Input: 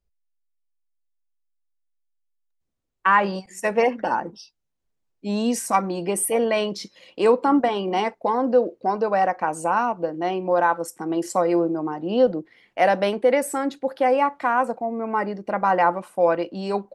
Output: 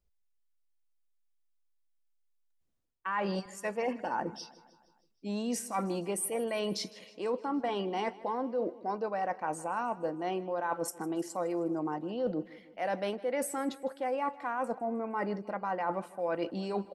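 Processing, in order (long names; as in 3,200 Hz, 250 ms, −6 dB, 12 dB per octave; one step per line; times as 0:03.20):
reversed playback
downward compressor 6 to 1, threshold −29 dBFS, peak gain reduction 15.5 dB
reversed playback
repeating echo 156 ms, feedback 57%, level −20 dB
level −1.5 dB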